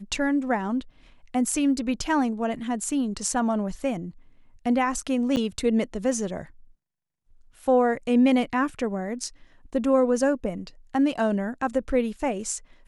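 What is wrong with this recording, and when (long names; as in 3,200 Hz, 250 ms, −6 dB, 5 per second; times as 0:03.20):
0:05.36–0:05.37: drop-out 8.5 ms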